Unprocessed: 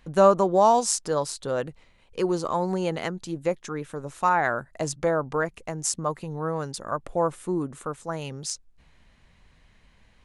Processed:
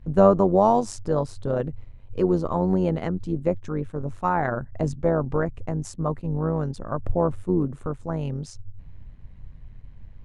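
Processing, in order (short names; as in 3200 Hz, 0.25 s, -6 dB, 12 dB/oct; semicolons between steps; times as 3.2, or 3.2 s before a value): tilt -4 dB/oct; AM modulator 97 Hz, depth 40%; attack slew limiter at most 520 dB/s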